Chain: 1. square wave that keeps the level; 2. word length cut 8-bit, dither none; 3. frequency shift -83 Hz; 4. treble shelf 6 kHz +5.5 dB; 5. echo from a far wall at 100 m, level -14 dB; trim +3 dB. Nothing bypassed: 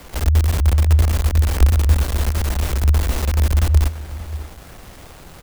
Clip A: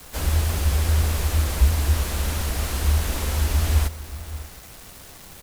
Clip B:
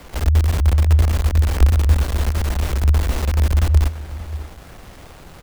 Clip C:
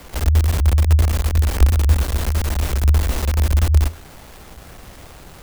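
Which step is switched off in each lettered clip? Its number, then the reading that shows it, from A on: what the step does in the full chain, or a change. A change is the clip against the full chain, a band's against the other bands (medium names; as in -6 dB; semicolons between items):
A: 1, distortion -8 dB; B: 4, 8 kHz band -3.5 dB; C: 5, echo-to-direct -16.0 dB to none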